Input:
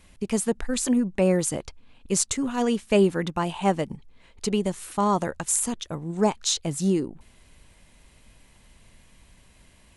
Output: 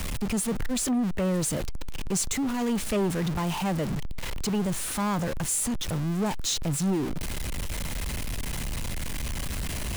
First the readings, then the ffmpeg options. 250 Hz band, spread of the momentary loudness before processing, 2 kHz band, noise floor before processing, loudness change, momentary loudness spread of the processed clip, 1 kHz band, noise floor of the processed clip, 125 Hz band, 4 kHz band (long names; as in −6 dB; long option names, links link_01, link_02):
−2.0 dB, 9 LU, +0.5 dB, −57 dBFS, −3.5 dB, 7 LU, −5.0 dB, −31 dBFS, +2.0 dB, −0.5 dB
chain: -filter_complex "[0:a]aeval=exprs='val(0)+0.5*0.0708*sgn(val(0))':channel_layout=same,acrossover=split=200|810[link_01][link_02][link_03];[link_01]acontrast=34[link_04];[link_04][link_02][link_03]amix=inputs=3:normalize=0,asoftclip=type=tanh:threshold=-16.5dB,volume=-4.5dB"